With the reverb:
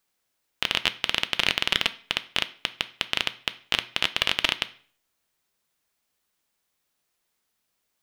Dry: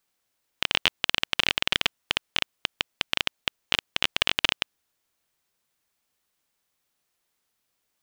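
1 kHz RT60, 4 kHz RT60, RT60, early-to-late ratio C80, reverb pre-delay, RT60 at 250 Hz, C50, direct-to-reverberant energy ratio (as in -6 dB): 0.45 s, 0.40 s, 0.45 s, 22.0 dB, 3 ms, 0.50 s, 18.0 dB, 11.0 dB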